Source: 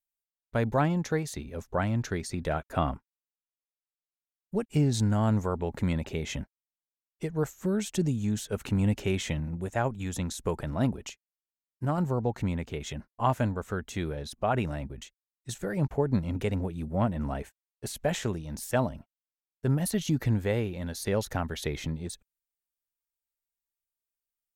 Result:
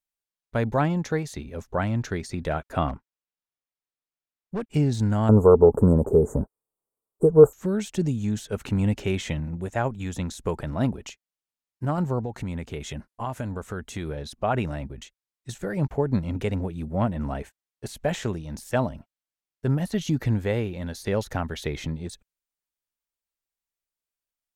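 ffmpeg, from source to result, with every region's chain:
ffmpeg -i in.wav -filter_complex "[0:a]asettb=1/sr,asplit=3[link_01][link_02][link_03];[link_01]atrim=end=2.884[link_04];[link_02]atrim=start=2.88:end=4.74,asetpts=PTS-STARTPTS,afade=type=in:duration=0.004:curve=qsin,afade=type=out:start_time=1.856:duration=0.004:curve=qsin,highshelf=frequency=4800:gain=-8.5,volume=27dB,asoftclip=hard,volume=-27dB[link_05];[link_03]atrim=start=4.736[link_06];[link_04][link_05]acrossfade=duration=0.004:curve1=hsin:curve2=qsin[link_07];[link_07][link_06]acrossfade=duration=0.004:curve1=qsin:curve2=hsin,asettb=1/sr,asplit=3[link_08][link_09][link_10];[link_08]atrim=end=5.294[link_11];[link_09]atrim=start=5.29:end=7.53,asetpts=PTS-STARTPTS,afade=type=in:duration=0.004:curve=qsin,afade=type=out:start_time=2.236:duration=0.004:curve=qsin,equalizer=frequency=440:width=3.3:gain=12,acontrast=81,asuperstop=centerf=3300:order=12:qfactor=0.5[link_12];[link_10]atrim=start=7.526[link_13];[link_11][link_12]acrossfade=duration=0.004:curve1=hsin:curve2=qsin[link_14];[link_14][link_13]acrossfade=duration=0.004:curve1=qsin:curve2=hsin,asettb=1/sr,asplit=3[link_15][link_16][link_17];[link_15]atrim=end=12.194[link_18];[link_16]atrim=start=12.19:end=14.09,asetpts=PTS-STARTPTS,afade=type=in:duration=0.004:curve=qsin,afade=type=out:start_time=1.896:duration=0.004:curve=qsin,equalizer=frequency=10000:width_type=o:width=0.83:gain=6,acompressor=threshold=-29dB:ratio=4:attack=3.2:release=140:knee=1:detection=peak[link_19];[link_17]atrim=start=14.086[link_20];[link_18][link_19]acrossfade=duration=0.004:curve1=hsin:curve2=qsin[link_21];[link_21][link_20]acrossfade=duration=0.004:curve1=qsin:curve2=hsin,deesser=0.8,highshelf=frequency=11000:gain=-7,volume=2.5dB" out.wav

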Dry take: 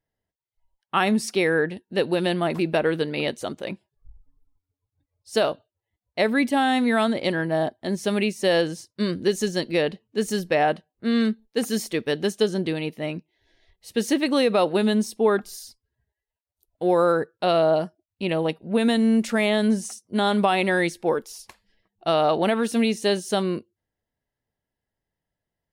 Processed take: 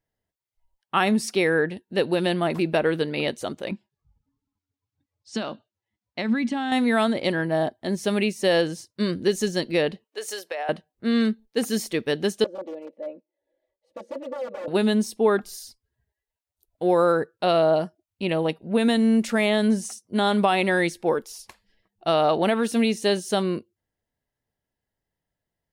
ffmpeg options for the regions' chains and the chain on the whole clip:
ffmpeg -i in.wav -filter_complex "[0:a]asettb=1/sr,asplit=3[link_01][link_02][link_03];[link_01]atrim=end=3.714[link_04];[link_02]atrim=start=3.71:end=6.72,asetpts=PTS-STARTPTS,afade=type=in:duration=0.004:curve=qsin,afade=type=out:start_time=3.006:duration=0.004:curve=qsin,acompressor=threshold=-23dB:ratio=4:attack=3.2:release=140:knee=1:detection=peak,highpass=120,equalizer=frequency=220:width_type=q:width=4:gain=9,equalizer=frequency=450:width_type=q:width=4:gain=-6,equalizer=frequency=630:width_type=q:width=4:gain=-6,lowpass=frequency=7100:width=0.5412,lowpass=frequency=7100:width=1.3066[link_05];[link_03]atrim=start=6.716[link_06];[link_04][link_05]acrossfade=duration=0.004:curve1=hsin:curve2=qsin[link_07];[link_07][link_06]acrossfade=duration=0.004:curve1=qsin:curve2=hsin,asettb=1/sr,asplit=3[link_08][link_09][link_10];[link_08]atrim=end=10.044[link_11];[link_09]atrim=start=10.04:end=10.69,asetpts=PTS-STARTPTS,afade=type=in:duration=0.004:curve=qsin,afade=type=out:start_time=0.646:duration=0.004:curve=qsin,highpass=frequency=480:width=0.5412,highpass=frequency=480:width=1.3066,acompressor=threshold=-26dB:ratio=12:attack=3.2:release=140:knee=1:detection=peak[link_12];[link_10]atrim=start=10.686[link_13];[link_11][link_12]acrossfade=duration=0.004:curve1=hsin:curve2=qsin[link_14];[link_14][link_13]acrossfade=duration=0.004:curve1=qsin:curve2=hsin,asettb=1/sr,asplit=3[link_15][link_16][link_17];[link_15]atrim=end=12.444[link_18];[link_16]atrim=start=12.44:end=14.68,asetpts=PTS-STARTPTS,afade=type=in:duration=0.004:curve=qsin,afade=type=out:start_time=2.236:duration=0.004:curve=qsin,aeval=exprs='(mod(7.08*val(0)+1,2)-1)/7.08':channel_layout=same,bandpass=frequency=530:width_type=q:width=5.3,aecho=1:1:3.5:0.86,atrim=end_sample=98784[link_19];[link_17]atrim=start=14.676[link_20];[link_18][link_19]acrossfade=duration=0.004:curve1=hsin:curve2=qsin[link_21];[link_21][link_20]acrossfade=duration=0.004:curve1=qsin:curve2=hsin" out.wav

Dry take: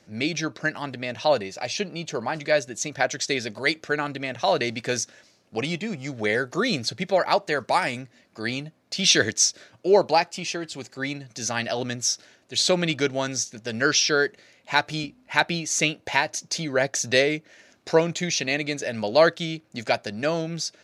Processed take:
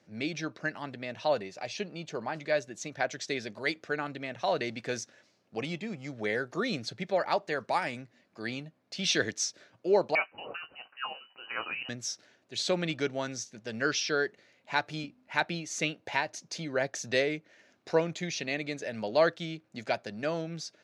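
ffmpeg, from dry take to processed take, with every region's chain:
ffmpeg -i in.wav -filter_complex "[0:a]asettb=1/sr,asplit=3[link_01][link_02][link_03];[link_01]atrim=end=10.154[link_04];[link_02]atrim=start=10.15:end=11.89,asetpts=PTS-STARTPTS,afade=type=in:duration=0.004:curve=qsin,afade=type=out:start_time=1.736:duration=0.004:curve=qsin,tiltshelf=frequency=1100:gain=-3.5,asplit=2[link_05][link_06];[link_06]adelay=19,volume=-10dB[link_07];[link_05][link_07]amix=inputs=2:normalize=0,atrim=end_sample=76734,lowpass=frequency=2600:width_type=q:width=0.5098,lowpass=frequency=2600:width_type=q:width=0.6013,lowpass=frequency=2600:width_type=q:width=0.9,lowpass=frequency=2600:width_type=q:width=2.563,afreqshift=-3100[link_08];[link_03]atrim=start=11.886[link_09];[link_04][link_08]acrossfade=duration=0.004:curve1=hsin:curve2=qsin[link_10];[link_10][link_09]acrossfade=duration=0.004:curve1=qsin:curve2=hsin,highpass=98,highshelf=frequency=5700:gain=-9.5,volume=-7dB" out.wav

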